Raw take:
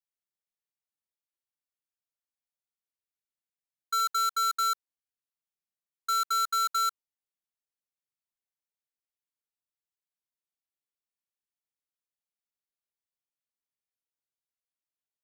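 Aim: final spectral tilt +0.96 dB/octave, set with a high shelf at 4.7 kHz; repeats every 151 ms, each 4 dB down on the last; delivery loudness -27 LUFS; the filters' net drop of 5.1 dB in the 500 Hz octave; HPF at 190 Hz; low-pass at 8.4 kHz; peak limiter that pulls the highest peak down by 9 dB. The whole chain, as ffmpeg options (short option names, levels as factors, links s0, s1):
-af "highpass=190,lowpass=8400,equalizer=f=500:t=o:g=-5.5,highshelf=f=4700:g=-4,alimiter=level_in=2.82:limit=0.0631:level=0:latency=1,volume=0.355,aecho=1:1:151|302|453|604|755|906|1057|1208|1359:0.631|0.398|0.25|0.158|0.0994|0.0626|0.0394|0.0249|0.0157,volume=3.35"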